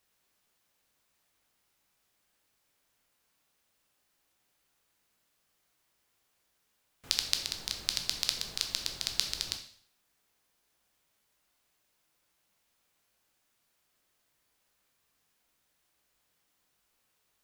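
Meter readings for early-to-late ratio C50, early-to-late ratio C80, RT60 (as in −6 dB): 9.0 dB, 12.5 dB, 0.55 s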